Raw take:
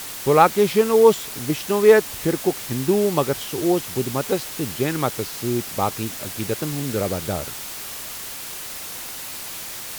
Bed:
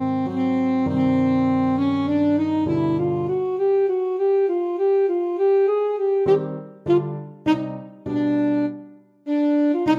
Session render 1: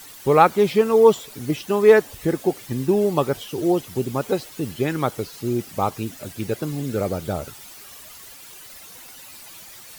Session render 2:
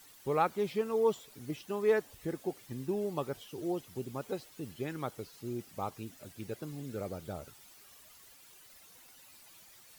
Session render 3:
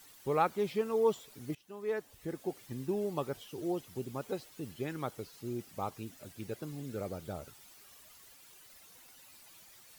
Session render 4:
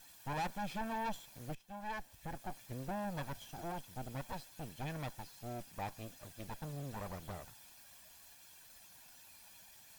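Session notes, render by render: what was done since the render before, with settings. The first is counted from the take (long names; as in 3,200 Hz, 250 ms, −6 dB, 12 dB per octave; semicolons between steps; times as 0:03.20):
broadband denoise 12 dB, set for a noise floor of −34 dBFS
level −15 dB
0:01.55–0:02.60: fade in linear, from −18 dB
lower of the sound and its delayed copy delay 1.2 ms; soft clipping −34 dBFS, distortion −10 dB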